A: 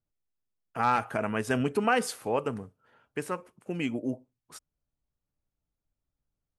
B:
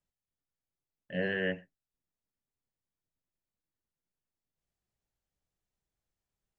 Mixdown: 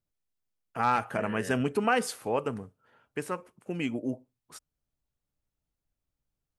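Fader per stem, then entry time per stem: −0.5, −10.0 decibels; 0.00, 0.00 seconds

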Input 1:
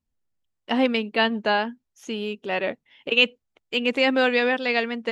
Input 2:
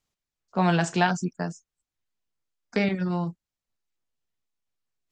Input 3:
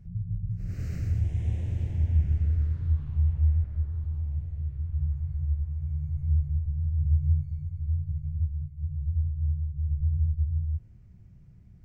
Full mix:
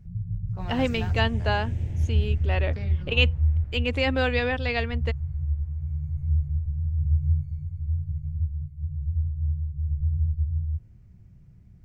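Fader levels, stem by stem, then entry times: −4.5, −17.0, +1.0 decibels; 0.00, 0.00, 0.00 seconds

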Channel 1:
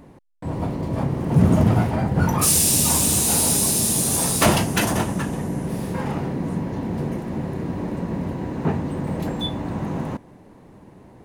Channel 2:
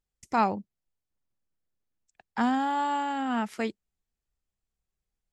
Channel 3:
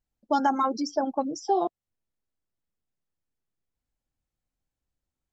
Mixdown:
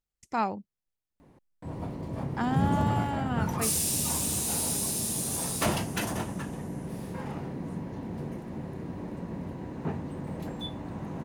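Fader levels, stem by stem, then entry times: −10.5 dB, −4.0 dB, muted; 1.20 s, 0.00 s, muted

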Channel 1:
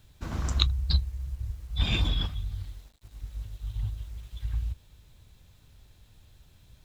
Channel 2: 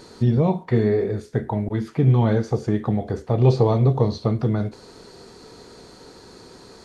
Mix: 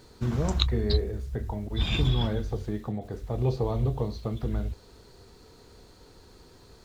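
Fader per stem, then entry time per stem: −1.0, −10.5 decibels; 0.00, 0.00 seconds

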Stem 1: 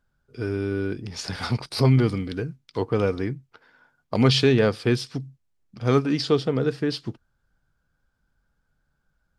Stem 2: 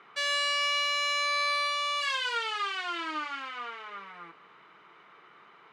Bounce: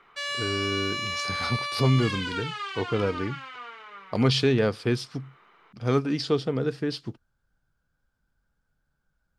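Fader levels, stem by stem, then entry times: −3.5, −2.5 decibels; 0.00, 0.00 seconds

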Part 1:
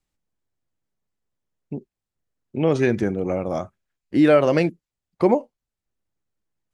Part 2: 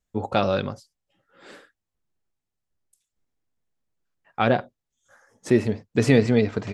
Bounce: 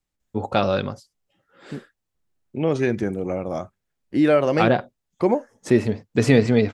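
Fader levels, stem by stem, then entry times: −2.0, +1.5 decibels; 0.00, 0.20 seconds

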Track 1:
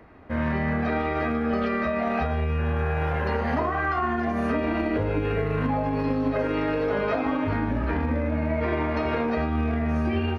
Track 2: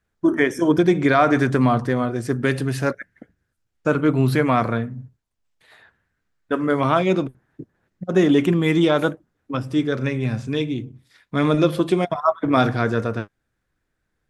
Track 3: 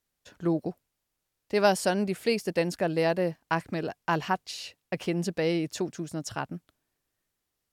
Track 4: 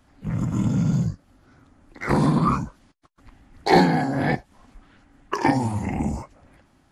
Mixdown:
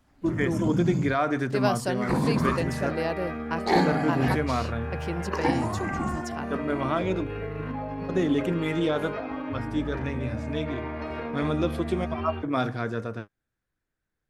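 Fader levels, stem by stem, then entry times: −8.0, −9.0, −4.0, −6.0 decibels; 2.05, 0.00, 0.00, 0.00 seconds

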